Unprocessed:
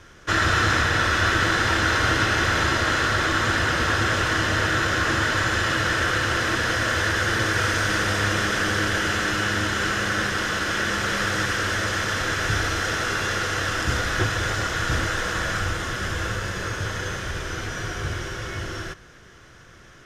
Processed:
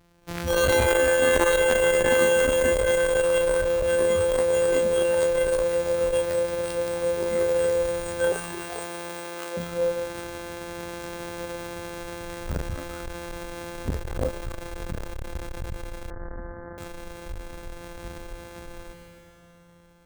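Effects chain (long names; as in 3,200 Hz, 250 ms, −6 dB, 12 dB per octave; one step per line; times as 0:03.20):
samples sorted by size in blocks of 256 samples
0:08.32–0:09.57: high-pass filter 330 Hz 24 dB per octave
convolution reverb RT60 3.0 s, pre-delay 113 ms, DRR 3 dB
noise reduction from a noise print of the clip's start 17 dB
0:16.10–0:16.78: Butterworth low-pass 1,900 Hz 96 dB per octave
saturating transformer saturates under 390 Hz
level +5 dB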